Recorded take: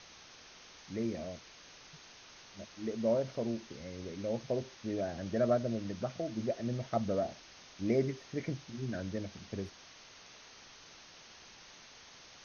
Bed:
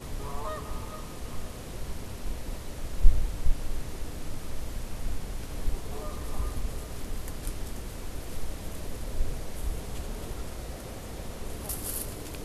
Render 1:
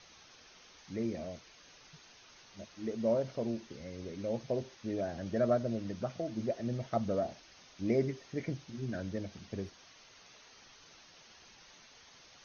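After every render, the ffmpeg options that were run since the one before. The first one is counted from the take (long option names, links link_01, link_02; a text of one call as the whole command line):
ffmpeg -i in.wav -af "afftdn=noise_reduction=6:noise_floor=-56" out.wav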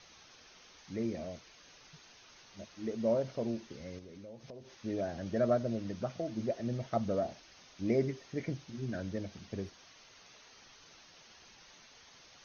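ffmpeg -i in.wav -filter_complex "[0:a]asettb=1/sr,asplit=3[link_01][link_02][link_03];[link_01]atrim=end=3.984[link_04];[link_02]atrim=start=3.98:end=4.71,asetpts=PTS-STARTPTS,afade=type=in:duration=0.004:curve=qsin,afade=type=out:start_time=0.726:duration=0.004:curve=qsin,acompressor=threshold=-47dB:ratio=5:attack=3.2:release=140:knee=1:detection=peak[link_05];[link_03]atrim=start=4.706[link_06];[link_04][link_05]acrossfade=duration=0.004:curve1=hsin:curve2=qsin[link_07];[link_07][link_06]acrossfade=duration=0.004:curve1=qsin:curve2=hsin" out.wav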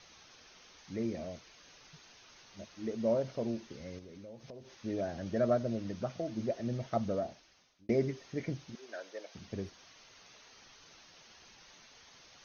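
ffmpeg -i in.wav -filter_complex "[0:a]asettb=1/sr,asplit=3[link_01][link_02][link_03];[link_01]atrim=end=8.754[link_04];[link_02]atrim=start=8.75:end=9.35,asetpts=PTS-STARTPTS,afade=type=in:duration=0.004:curve=qsin,afade=type=out:start_time=0.596:duration=0.004:curve=qsin,highpass=frequency=470:width=0.5412,highpass=frequency=470:width=1.3066[link_05];[link_03]atrim=start=9.346[link_06];[link_04][link_05]acrossfade=duration=0.004:curve1=hsin:curve2=qsin[link_07];[link_07][link_06]acrossfade=duration=0.004:curve1=qsin:curve2=hsin,asplit=2[link_08][link_09];[link_08]atrim=end=7.89,asetpts=PTS-STARTPTS,afade=type=out:start_time=7.03:duration=0.86[link_10];[link_09]atrim=start=7.89,asetpts=PTS-STARTPTS,afade=type=in:duration=0.004:curve=hsin[link_11];[link_10][link_11]concat=n=2:v=0:a=1" out.wav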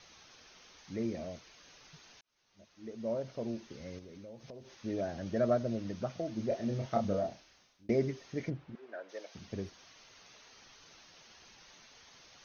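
ffmpeg -i in.wav -filter_complex "[0:a]asettb=1/sr,asplit=3[link_01][link_02][link_03];[link_01]atrim=end=6.484[link_04];[link_02]atrim=start=6.48:end=7.92,asetpts=PTS-STARTPTS,afade=type=in:duration=0.004:curve=qsin,afade=type=out:start_time=1.436:duration=0.004:curve=qsin,asplit=2[link_05][link_06];[link_06]adelay=30,volume=-4dB[link_07];[link_05][link_07]amix=inputs=2:normalize=0,atrim=end_sample=63504[link_08];[link_03]atrim=start=7.916[link_09];[link_04][link_08]acrossfade=duration=0.004:curve1=hsin:curve2=qsin[link_10];[link_10][link_09]acrossfade=duration=0.004:curve1=qsin:curve2=hsin,asplit=3[link_11][link_12][link_13];[link_11]afade=type=out:start_time=8.49:duration=0.02[link_14];[link_12]lowpass=1800,afade=type=in:start_time=8.49:duration=0.02,afade=type=out:start_time=9.08:duration=0.02[link_15];[link_13]afade=type=in:start_time=9.08:duration=0.02[link_16];[link_14][link_15][link_16]amix=inputs=3:normalize=0,asplit=2[link_17][link_18];[link_17]atrim=end=2.21,asetpts=PTS-STARTPTS,afade=type=out:start_time=2.206:duration=0.004:curve=hsin[link_19];[link_18]atrim=start=2.21,asetpts=PTS-STARTPTS,afade=type=in:duration=1.65[link_20];[link_19][link_20]concat=n=2:v=0:a=1" out.wav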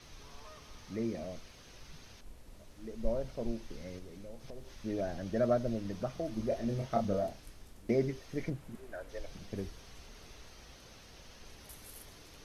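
ffmpeg -i in.wav -i bed.wav -filter_complex "[1:a]volume=-18dB[link_01];[0:a][link_01]amix=inputs=2:normalize=0" out.wav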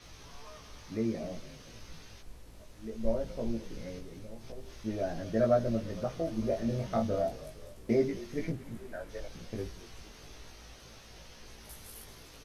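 ffmpeg -i in.wav -filter_complex "[0:a]asplit=2[link_01][link_02];[link_02]adelay=18,volume=-2dB[link_03];[link_01][link_03]amix=inputs=2:normalize=0,asplit=6[link_04][link_05][link_06][link_07][link_08][link_09];[link_05]adelay=227,afreqshift=-38,volume=-17.5dB[link_10];[link_06]adelay=454,afreqshift=-76,volume=-22.4dB[link_11];[link_07]adelay=681,afreqshift=-114,volume=-27.3dB[link_12];[link_08]adelay=908,afreqshift=-152,volume=-32.1dB[link_13];[link_09]adelay=1135,afreqshift=-190,volume=-37dB[link_14];[link_04][link_10][link_11][link_12][link_13][link_14]amix=inputs=6:normalize=0" out.wav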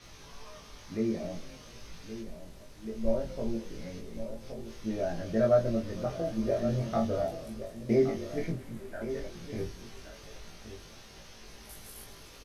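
ffmpeg -i in.wav -filter_complex "[0:a]asplit=2[link_01][link_02];[link_02]adelay=23,volume=-5dB[link_03];[link_01][link_03]amix=inputs=2:normalize=0,aecho=1:1:1120:0.266" out.wav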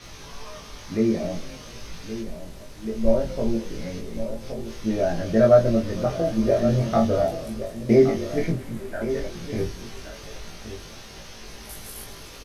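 ffmpeg -i in.wav -af "volume=9dB" out.wav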